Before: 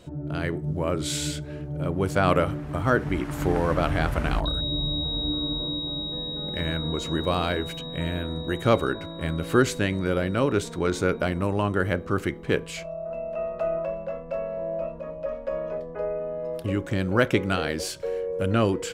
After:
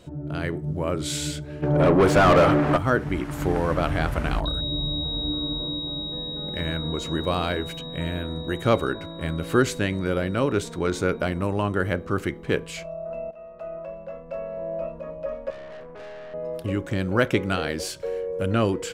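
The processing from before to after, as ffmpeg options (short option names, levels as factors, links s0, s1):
-filter_complex "[0:a]asplit=3[s0][s1][s2];[s0]afade=t=out:st=1.62:d=0.02[s3];[s1]asplit=2[s4][s5];[s5]highpass=f=720:p=1,volume=35.5,asoftclip=type=tanh:threshold=0.422[s6];[s4][s6]amix=inputs=2:normalize=0,lowpass=f=1300:p=1,volume=0.501,afade=t=in:st=1.62:d=0.02,afade=t=out:st=2.76:d=0.02[s7];[s2]afade=t=in:st=2.76:d=0.02[s8];[s3][s7][s8]amix=inputs=3:normalize=0,asettb=1/sr,asplit=3[s9][s10][s11];[s9]atrim=end=15.504[s12];[s10]atrim=start=15.5:end=16.34,asetpts=PTS-STARTPTS,afade=t=in:d=0.004:c=qsin,afade=t=out:st=0.836:d=0.004:c=qsin,aeval=exprs='(tanh(79.4*val(0)+0.4)-tanh(0.4))/79.4':c=same[s13];[s11]atrim=start=16.336[s14];[s12][s13]acrossfade=d=0.004:c1=hsin:c2=qsin[s15];[s15][s14]acrossfade=d=0.004:c1=qsin:c2=hsin,asplit=2[s16][s17];[s16]atrim=end=13.31,asetpts=PTS-STARTPTS,afade=t=out:st=13.306:d=0.004:c=hsin:silence=0.16788[s18];[s17]atrim=start=13.31,asetpts=PTS-STARTPTS,afade=t=in:d=1.52:silence=0.16788[s19];[s18][s19]concat=n=2:v=0:a=1"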